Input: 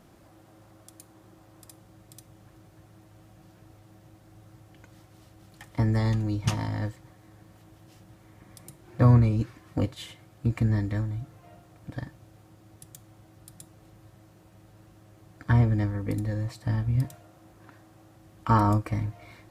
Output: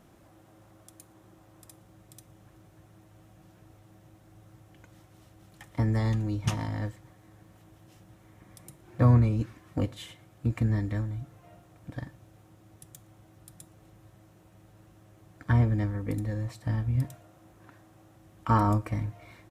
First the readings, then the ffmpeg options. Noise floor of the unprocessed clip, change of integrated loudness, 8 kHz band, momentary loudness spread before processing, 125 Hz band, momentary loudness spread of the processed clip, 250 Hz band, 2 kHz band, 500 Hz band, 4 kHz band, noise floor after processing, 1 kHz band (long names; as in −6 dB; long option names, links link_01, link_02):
−56 dBFS, −2.0 dB, can't be measured, 18 LU, −2.0 dB, 18 LU, −2.0 dB, −2.0 dB, −2.0 dB, −3.0 dB, −58 dBFS, −2.0 dB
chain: -filter_complex "[0:a]equalizer=frequency=4600:width_type=o:width=0.27:gain=-4.5,asplit=2[link_01][link_02];[link_02]adelay=116.6,volume=-27dB,highshelf=frequency=4000:gain=-2.62[link_03];[link_01][link_03]amix=inputs=2:normalize=0,volume=-2dB"